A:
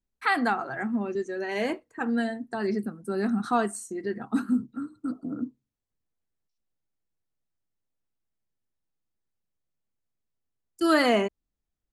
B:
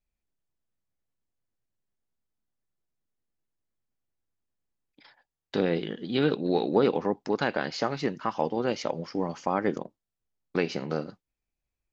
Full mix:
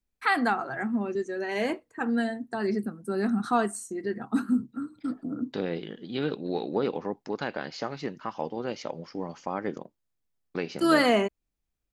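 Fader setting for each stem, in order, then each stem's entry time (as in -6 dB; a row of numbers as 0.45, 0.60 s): 0.0, -5.0 dB; 0.00, 0.00 s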